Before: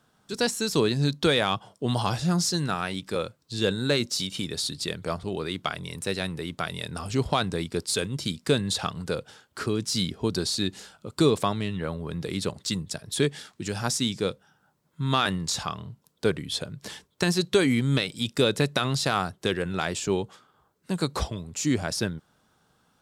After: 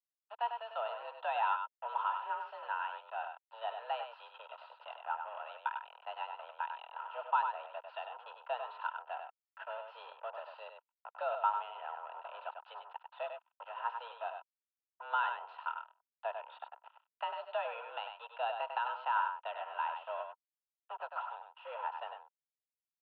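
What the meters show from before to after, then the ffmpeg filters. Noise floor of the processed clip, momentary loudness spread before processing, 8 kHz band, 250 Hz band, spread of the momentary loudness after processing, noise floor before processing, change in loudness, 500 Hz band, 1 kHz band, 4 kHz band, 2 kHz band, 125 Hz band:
under -85 dBFS, 10 LU, under -40 dB, under -40 dB, 16 LU, -68 dBFS, -12.5 dB, -15.5 dB, -2.0 dB, -22.5 dB, -11.0 dB, under -40 dB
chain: -filter_complex "[0:a]acrusher=bits=4:mix=0:aa=0.5,asplit=3[s0][s1][s2];[s0]bandpass=f=730:t=q:w=8,volume=1[s3];[s1]bandpass=f=1090:t=q:w=8,volume=0.501[s4];[s2]bandpass=f=2440:t=q:w=8,volume=0.355[s5];[s3][s4][s5]amix=inputs=3:normalize=0,aemphasis=mode=reproduction:type=75kf,highpass=f=290:t=q:w=0.5412,highpass=f=290:t=q:w=1.307,lowpass=f=3000:t=q:w=0.5176,lowpass=f=3000:t=q:w=0.7071,lowpass=f=3000:t=q:w=1.932,afreqshift=230,asplit=2[s6][s7];[s7]aecho=0:1:98:0.473[s8];[s6][s8]amix=inputs=2:normalize=0,volume=1.26"

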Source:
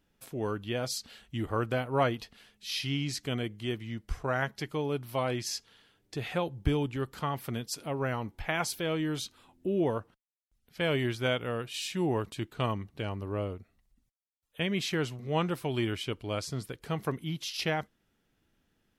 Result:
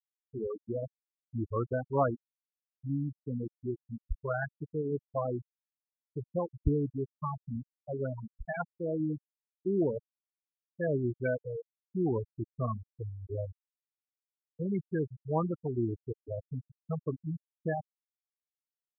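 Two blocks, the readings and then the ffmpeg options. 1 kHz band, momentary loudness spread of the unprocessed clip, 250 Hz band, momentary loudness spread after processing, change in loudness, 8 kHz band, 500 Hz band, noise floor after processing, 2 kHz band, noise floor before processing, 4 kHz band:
-4.5 dB, 9 LU, -1.5 dB, 11 LU, -2.5 dB, under -40 dB, -1.5 dB, under -85 dBFS, -8.5 dB, -76 dBFS, under -40 dB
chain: -filter_complex "[0:a]acrossover=split=3200[s0][s1];[s1]acompressor=threshold=0.00447:ratio=4:attack=1:release=60[s2];[s0][s2]amix=inputs=2:normalize=0,afftfilt=real='re*gte(hypot(re,im),0.126)':imag='im*gte(hypot(re,im),0.126)':win_size=1024:overlap=0.75"

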